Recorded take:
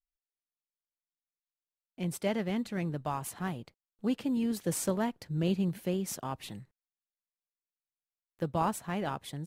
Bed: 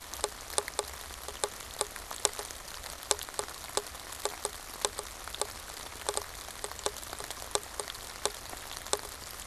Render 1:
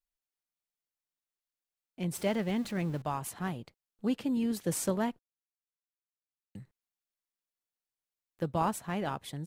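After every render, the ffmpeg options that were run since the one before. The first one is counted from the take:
ffmpeg -i in.wav -filter_complex "[0:a]asettb=1/sr,asplit=3[link_01][link_02][link_03];[link_01]atrim=end=2.154[link_04];[link_02]atrim=start=2.15:end=3.02,asetpts=PTS-STARTPTS,afade=type=in:duration=0.004:curve=qsin,afade=type=out:start_time=0.866:duration=0.004:curve=qsin,aeval=exprs='val(0)+0.5*0.00631*sgn(val(0))':channel_layout=same[link_05];[link_03]atrim=start=3.016[link_06];[link_04][link_05]acrossfade=duration=0.004:curve1=hsin:curve2=qsin[link_07];[link_07][link_06]acrossfade=duration=0.004:curve1=qsin:curve2=hsin,asplit=3[link_08][link_09][link_10];[link_08]atrim=end=5.19,asetpts=PTS-STARTPTS,afade=type=out:start_time=5.186:duration=0.004:curve=hsin[link_11];[link_09]atrim=start=5.19:end=6.55,asetpts=PTS-STARTPTS,volume=0[link_12];[link_10]atrim=start=6.55,asetpts=PTS-STARTPTS,afade=type=in:duration=0.004:curve=hsin[link_13];[link_11][link_12][link_13]concat=n=3:v=0:a=1" out.wav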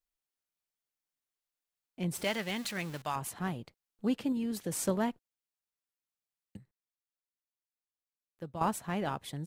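ffmpeg -i in.wav -filter_complex "[0:a]asettb=1/sr,asplit=3[link_01][link_02][link_03];[link_01]atrim=end=2.244[link_04];[link_02]atrim=start=2.24:end=3.16,asetpts=PTS-STARTPTS,afade=type=in:duration=0.004:curve=qsin,afade=type=out:start_time=0.916:duration=0.004:curve=qsin,tiltshelf=frequency=940:gain=-8[link_05];[link_03]atrim=start=3.156[link_06];[link_04][link_05]acrossfade=duration=0.004:curve1=hsin:curve2=qsin[link_07];[link_07][link_06]acrossfade=duration=0.004:curve1=qsin:curve2=hsin,asettb=1/sr,asplit=3[link_08][link_09][link_10];[link_08]atrim=end=4.324[link_11];[link_09]atrim=start=4.32:end=4.79,asetpts=PTS-STARTPTS,afade=type=in:duration=0.004:curve=qsin,afade=type=out:start_time=0.466:duration=0.004:curve=qsin,acompressor=threshold=-32dB:ratio=2.5:attack=3.2:release=140:knee=1:detection=peak[link_12];[link_10]atrim=start=4.786[link_13];[link_11][link_12]acrossfade=duration=0.004:curve1=hsin:curve2=qsin[link_14];[link_14][link_13]acrossfade=duration=0.004:curve1=qsin:curve2=hsin,asplit=3[link_15][link_16][link_17];[link_15]atrim=end=6.572[link_18];[link_16]atrim=start=6.568:end=8.612,asetpts=PTS-STARTPTS,volume=-9.5dB[link_19];[link_17]atrim=start=8.608[link_20];[link_18][link_19]acrossfade=duration=0.004:curve1=hsin:curve2=hsin[link_21];[link_21][link_20]acrossfade=duration=0.004:curve1=hsin:curve2=hsin" out.wav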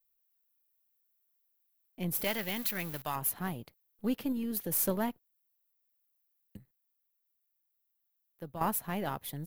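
ffmpeg -i in.wav -af "aeval=exprs='if(lt(val(0),0),0.708*val(0),val(0))':channel_layout=same,aexciter=amount=5.8:drive=7.5:freq=11000" out.wav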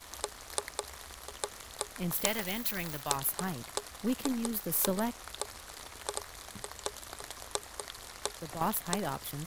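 ffmpeg -i in.wav -i bed.wav -filter_complex "[1:a]volume=-4dB[link_01];[0:a][link_01]amix=inputs=2:normalize=0" out.wav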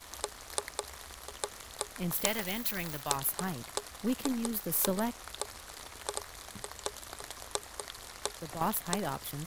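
ffmpeg -i in.wav -af anull out.wav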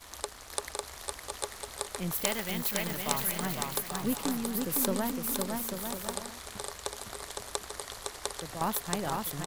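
ffmpeg -i in.wav -af "aecho=1:1:510|841.5|1057|1197|1288:0.631|0.398|0.251|0.158|0.1" out.wav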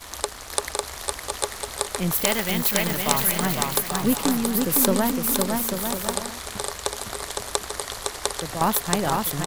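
ffmpeg -i in.wav -af "volume=9.5dB,alimiter=limit=-1dB:level=0:latency=1" out.wav

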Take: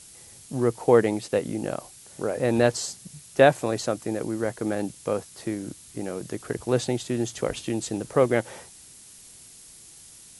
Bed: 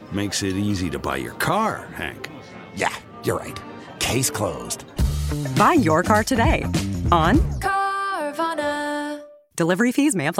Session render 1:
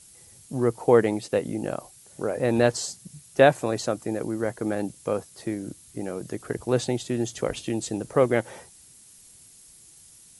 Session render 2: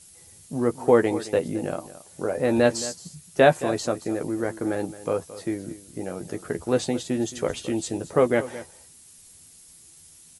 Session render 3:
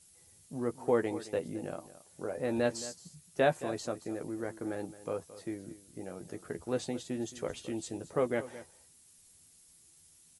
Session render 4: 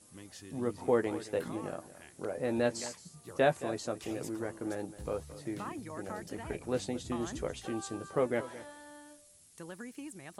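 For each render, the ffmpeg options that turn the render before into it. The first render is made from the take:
ffmpeg -i in.wav -af "afftdn=noise_reduction=6:noise_floor=-49" out.wav
ffmpeg -i in.wav -filter_complex "[0:a]asplit=2[link_01][link_02];[link_02]adelay=12,volume=-7dB[link_03];[link_01][link_03]amix=inputs=2:normalize=0,aecho=1:1:220:0.168" out.wav
ffmpeg -i in.wav -af "volume=-10.5dB" out.wav
ffmpeg -i in.wav -i bed.wav -filter_complex "[1:a]volume=-26.5dB[link_01];[0:a][link_01]amix=inputs=2:normalize=0" out.wav

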